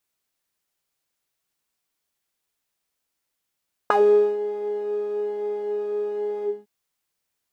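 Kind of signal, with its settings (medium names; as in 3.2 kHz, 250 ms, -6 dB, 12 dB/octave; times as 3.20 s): synth patch with pulse-width modulation G#4, oscillator 2 saw, sub -11 dB, noise -9.5 dB, filter bandpass, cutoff 240 Hz, Q 6.2, filter envelope 2.5 oct, filter decay 0.10 s, attack 3.1 ms, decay 0.47 s, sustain -15 dB, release 0.22 s, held 2.54 s, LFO 1.1 Hz, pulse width 36%, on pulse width 6%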